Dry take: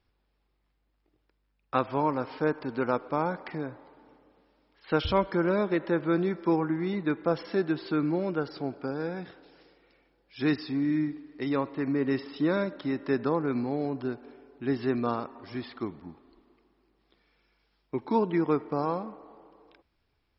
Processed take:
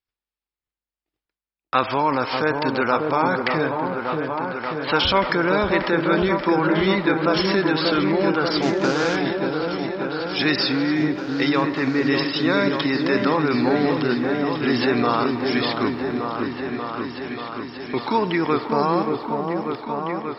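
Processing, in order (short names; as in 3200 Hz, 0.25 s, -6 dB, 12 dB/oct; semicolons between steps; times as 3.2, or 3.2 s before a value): 8.62–9.16 CVSD 32 kbps; expander -55 dBFS; tilt shelf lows -7 dB; in parallel at 0 dB: negative-ratio compressor -36 dBFS; on the sum: repeats that get brighter 0.585 s, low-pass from 750 Hz, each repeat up 1 oct, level -3 dB; gain +6.5 dB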